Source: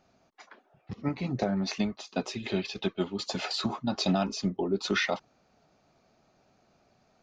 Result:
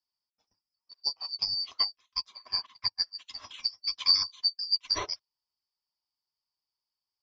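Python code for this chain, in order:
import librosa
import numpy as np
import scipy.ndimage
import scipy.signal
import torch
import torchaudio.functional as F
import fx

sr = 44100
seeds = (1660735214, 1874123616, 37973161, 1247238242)

y = fx.band_shuffle(x, sr, order='2341')
y = fx.graphic_eq_15(y, sr, hz=(100, 1000, 4000), db=(5, 9, 7))
y = fx.upward_expand(y, sr, threshold_db=-37.0, expansion=2.5)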